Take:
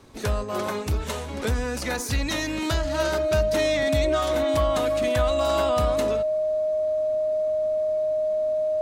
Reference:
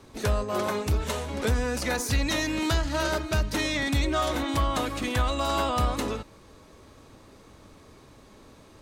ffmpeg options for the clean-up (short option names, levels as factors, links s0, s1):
-af "bandreject=f=620:w=30"